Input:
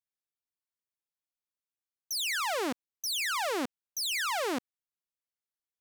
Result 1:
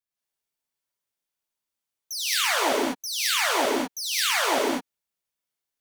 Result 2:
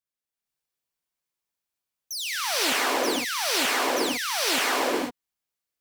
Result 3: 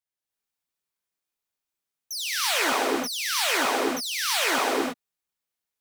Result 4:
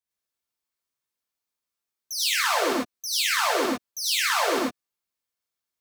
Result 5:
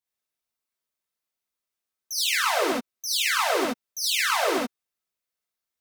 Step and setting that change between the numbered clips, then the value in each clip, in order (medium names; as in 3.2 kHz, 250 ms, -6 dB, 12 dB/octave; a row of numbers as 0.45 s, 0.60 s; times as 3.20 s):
gated-style reverb, gate: 230 ms, 530 ms, 360 ms, 130 ms, 90 ms